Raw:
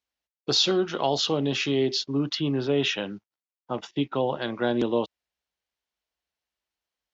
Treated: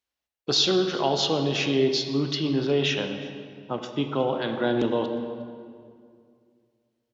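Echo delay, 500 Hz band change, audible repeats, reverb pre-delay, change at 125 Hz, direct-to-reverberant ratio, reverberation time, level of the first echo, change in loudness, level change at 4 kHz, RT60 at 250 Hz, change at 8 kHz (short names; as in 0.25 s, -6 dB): 0.359 s, +1.5 dB, 1, 18 ms, +1.5 dB, 5.5 dB, 2.2 s, -22.5 dB, +0.5 dB, +1.0 dB, 2.6 s, n/a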